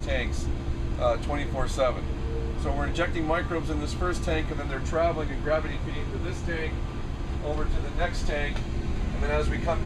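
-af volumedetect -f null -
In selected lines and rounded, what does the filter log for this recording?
mean_volume: -26.9 dB
max_volume: -10.4 dB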